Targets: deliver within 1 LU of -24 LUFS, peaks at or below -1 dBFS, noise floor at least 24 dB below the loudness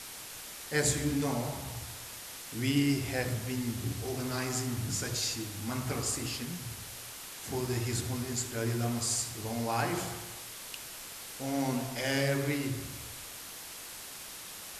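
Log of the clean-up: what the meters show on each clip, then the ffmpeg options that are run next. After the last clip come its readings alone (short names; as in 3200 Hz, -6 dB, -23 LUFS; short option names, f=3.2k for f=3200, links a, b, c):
noise floor -45 dBFS; noise floor target -58 dBFS; loudness -34.0 LUFS; peak -15.5 dBFS; loudness target -24.0 LUFS
-> -af "afftdn=nr=13:nf=-45"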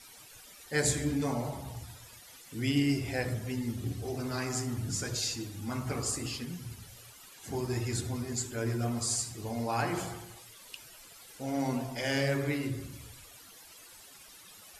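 noise floor -53 dBFS; noise floor target -57 dBFS
-> -af "afftdn=nr=6:nf=-53"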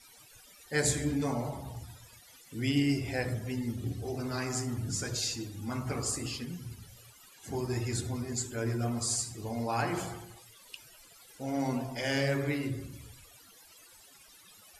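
noise floor -57 dBFS; loudness -33.0 LUFS; peak -16.0 dBFS; loudness target -24.0 LUFS
-> -af "volume=9dB"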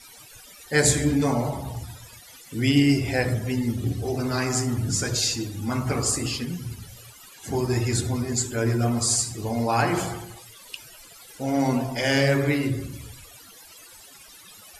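loudness -24.0 LUFS; peak -7.0 dBFS; noise floor -48 dBFS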